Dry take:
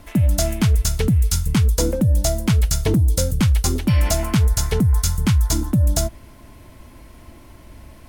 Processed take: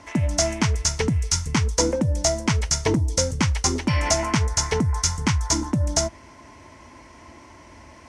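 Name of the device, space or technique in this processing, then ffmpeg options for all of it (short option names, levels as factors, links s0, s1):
car door speaker: -af "highpass=95,equalizer=f=120:t=q:w=4:g=-7,equalizer=f=190:t=q:w=4:g=-7,equalizer=f=950:t=q:w=4:g=8,equalizer=f=2000:t=q:w=4:g=6,equalizer=f=3700:t=q:w=4:g=-4,equalizer=f=5800:t=q:w=4:g=8,lowpass=f=8100:w=0.5412,lowpass=f=8100:w=1.3066"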